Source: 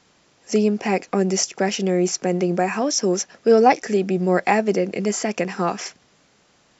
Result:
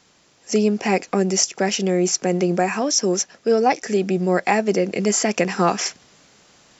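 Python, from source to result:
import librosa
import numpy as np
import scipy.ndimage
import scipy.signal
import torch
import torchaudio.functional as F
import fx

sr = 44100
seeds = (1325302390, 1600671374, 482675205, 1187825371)

y = fx.high_shelf(x, sr, hz=4000.0, db=5.5)
y = fx.rider(y, sr, range_db=10, speed_s=0.5)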